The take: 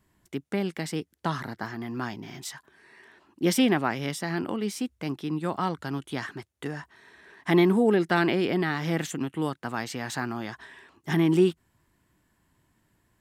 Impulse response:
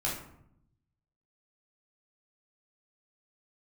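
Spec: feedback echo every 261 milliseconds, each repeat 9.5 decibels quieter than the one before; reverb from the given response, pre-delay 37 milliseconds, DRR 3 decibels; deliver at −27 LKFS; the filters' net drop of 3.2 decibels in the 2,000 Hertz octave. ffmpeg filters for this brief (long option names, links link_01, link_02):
-filter_complex "[0:a]equalizer=frequency=2000:width_type=o:gain=-4,aecho=1:1:261|522|783|1044:0.335|0.111|0.0365|0.012,asplit=2[link_01][link_02];[1:a]atrim=start_sample=2205,adelay=37[link_03];[link_02][link_03]afir=irnorm=-1:irlink=0,volume=-9dB[link_04];[link_01][link_04]amix=inputs=2:normalize=0,volume=-2dB"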